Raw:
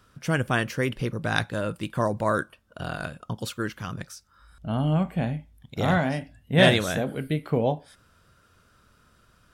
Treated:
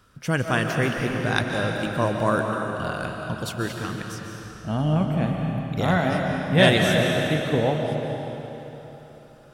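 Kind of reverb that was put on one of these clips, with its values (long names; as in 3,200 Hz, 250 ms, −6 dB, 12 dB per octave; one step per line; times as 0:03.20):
comb and all-pass reverb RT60 3.6 s, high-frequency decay 0.9×, pre-delay 105 ms, DRR 1.5 dB
level +1 dB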